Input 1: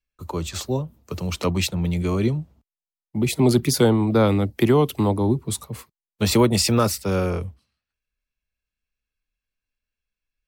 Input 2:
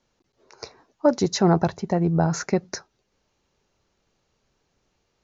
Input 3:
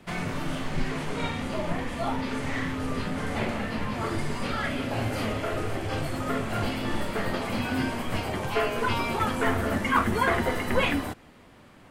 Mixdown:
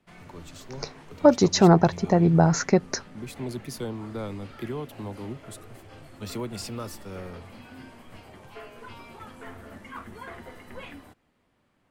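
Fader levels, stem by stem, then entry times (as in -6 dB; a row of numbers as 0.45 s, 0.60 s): -16.5 dB, +2.5 dB, -17.5 dB; 0.00 s, 0.20 s, 0.00 s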